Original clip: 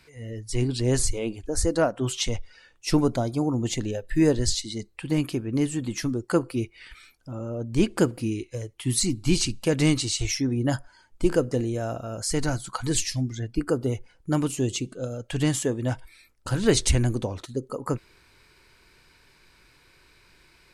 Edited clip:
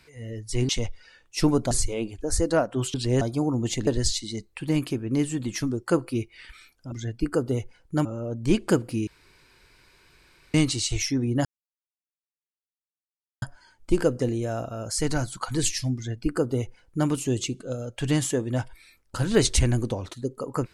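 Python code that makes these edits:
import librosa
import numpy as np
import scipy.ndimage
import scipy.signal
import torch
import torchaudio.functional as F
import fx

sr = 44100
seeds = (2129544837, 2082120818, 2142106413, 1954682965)

y = fx.edit(x, sr, fx.swap(start_s=0.69, length_s=0.27, other_s=2.19, other_length_s=1.02),
    fx.cut(start_s=3.87, length_s=0.42),
    fx.room_tone_fill(start_s=8.36, length_s=1.47),
    fx.insert_silence(at_s=10.74, length_s=1.97),
    fx.duplicate(start_s=13.27, length_s=1.13, to_s=7.34), tone=tone)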